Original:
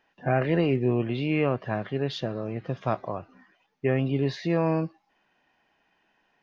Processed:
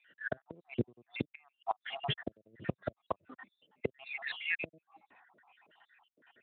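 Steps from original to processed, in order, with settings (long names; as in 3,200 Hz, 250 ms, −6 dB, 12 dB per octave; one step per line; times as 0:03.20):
time-frequency cells dropped at random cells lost 72%
high-pass filter 160 Hz 6 dB per octave
in parallel at +1 dB: downward compressor 20 to 1, threshold −35 dBFS, peak gain reduction 15.5 dB
on the sum: gate with flip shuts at −21 dBFS, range −37 dB
level +3 dB
Speex 15 kbit/s 8,000 Hz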